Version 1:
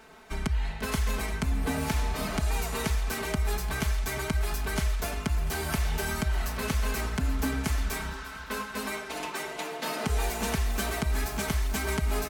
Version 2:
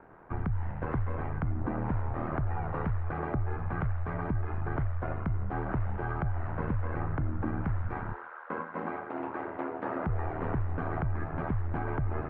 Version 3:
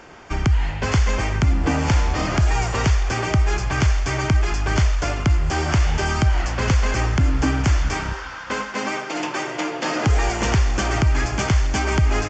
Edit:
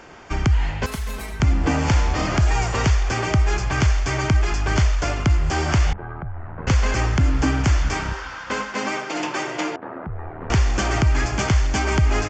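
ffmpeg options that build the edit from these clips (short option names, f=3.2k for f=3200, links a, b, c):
-filter_complex "[1:a]asplit=2[a][b];[2:a]asplit=4[c][d][e][f];[c]atrim=end=0.862[g];[0:a]atrim=start=0.858:end=1.402[h];[d]atrim=start=1.398:end=5.932[i];[a]atrim=start=5.928:end=6.672[j];[e]atrim=start=6.668:end=9.762[k];[b]atrim=start=9.758:end=10.502[l];[f]atrim=start=10.498[m];[g][h]acrossfade=d=0.004:c1=hsin:c2=hsin[n];[n][i]acrossfade=d=0.004:c1=hsin:c2=hsin[o];[o][j]acrossfade=d=0.004:c1=hsin:c2=hsin[p];[p][k]acrossfade=d=0.004:c1=hsin:c2=hsin[q];[q][l]acrossfade=d=0.004:c1=hsin:c2=hsin[r];[r][m]acrossfade=d=0.004:c1=hsin:c2=hsin"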